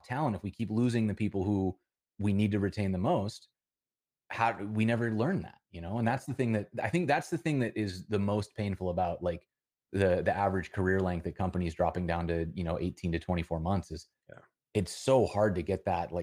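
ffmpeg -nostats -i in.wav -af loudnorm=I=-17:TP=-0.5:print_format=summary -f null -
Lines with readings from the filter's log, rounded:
Input Integrated:    -31.5 LUFS
Input True Peak:     -12.9 dBTP
Input LRA:             1.5 LU
Input Threshold:     -42.0 LUFS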